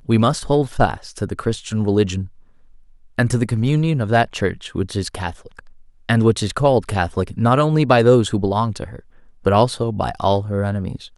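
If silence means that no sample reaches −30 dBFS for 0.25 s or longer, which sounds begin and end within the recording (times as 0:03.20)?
0:03.18–0:05.59
0:06.09–0:08.99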